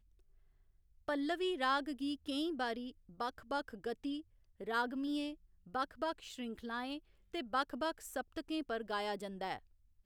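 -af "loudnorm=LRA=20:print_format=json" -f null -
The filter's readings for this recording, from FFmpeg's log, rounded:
"input_i" : "-39.8",
"input_tp" : "-21.7",
"input_lra" : "2.5",
"input_thresh" : "-50.0",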